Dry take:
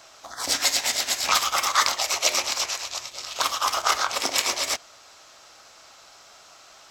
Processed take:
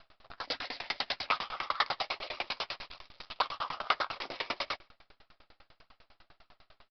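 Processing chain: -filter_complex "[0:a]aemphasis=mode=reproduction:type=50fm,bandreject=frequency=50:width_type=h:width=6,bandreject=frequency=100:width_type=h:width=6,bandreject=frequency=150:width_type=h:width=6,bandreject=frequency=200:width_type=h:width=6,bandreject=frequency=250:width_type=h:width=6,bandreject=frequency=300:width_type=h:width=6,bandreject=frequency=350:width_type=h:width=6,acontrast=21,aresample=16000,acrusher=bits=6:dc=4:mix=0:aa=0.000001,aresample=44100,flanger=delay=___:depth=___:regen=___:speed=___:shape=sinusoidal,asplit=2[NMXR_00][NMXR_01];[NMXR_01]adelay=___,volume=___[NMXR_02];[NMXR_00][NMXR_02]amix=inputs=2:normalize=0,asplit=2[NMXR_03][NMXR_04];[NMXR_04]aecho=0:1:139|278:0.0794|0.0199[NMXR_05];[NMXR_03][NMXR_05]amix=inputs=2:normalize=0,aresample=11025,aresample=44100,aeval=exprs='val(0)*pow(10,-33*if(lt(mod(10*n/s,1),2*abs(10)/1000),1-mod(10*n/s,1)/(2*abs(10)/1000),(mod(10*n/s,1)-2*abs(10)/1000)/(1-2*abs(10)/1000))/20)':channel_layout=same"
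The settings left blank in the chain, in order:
0.7, 9.1, 55, 1.7, 12, 0.2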